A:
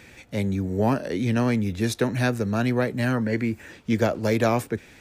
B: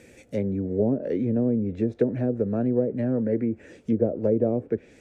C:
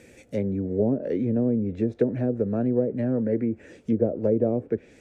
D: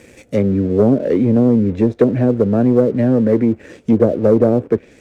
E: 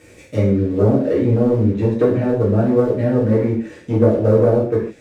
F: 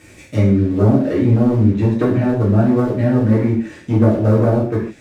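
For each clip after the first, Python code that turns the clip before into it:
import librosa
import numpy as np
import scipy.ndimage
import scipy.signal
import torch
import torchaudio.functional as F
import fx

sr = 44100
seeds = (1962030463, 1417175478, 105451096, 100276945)

y1 = fx.env_lowpass_down(x, sr, base_hz=510.0, full_db=-18.0)
y1 = fx.graphic_eq(y1, sr, hz=(250, 500, 1000, 4000, 8000), db=(4, 11, -9, -5, 6))
y1 = y1 * 10.0 ** (-5.5 / 20.0)
y2 = y1
y3 = fx.leveller(y2, sr, passes=1)
y3 = y3 * 10.0 ** (7.5 / 20.0)
y4 = fx.rev_gated(y3, sr, seeds[0], gate_ms=180, shape='falling', drr_db=-7.0)
y4 = y4 * 10.0 ** (-8.0 / 20.0)
y5 = fx.peak_eq(y4, sr, hz=480.0, db=-11.5, octaves=0.41)
y5 = y5 * 10.0 ** (3.5 / 20.0)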